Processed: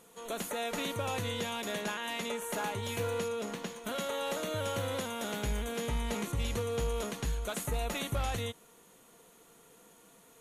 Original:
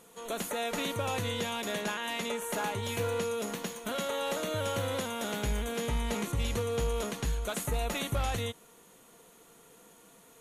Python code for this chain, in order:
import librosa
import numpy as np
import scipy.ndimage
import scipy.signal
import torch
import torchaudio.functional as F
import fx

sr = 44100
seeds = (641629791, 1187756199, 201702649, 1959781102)

y = fx.high_shelf(x, sr, hz=9200.0, db=-11.5, at=(3.28, 3.84))
y = F.gain(torch.from_numpy(y), -2.0).numpy()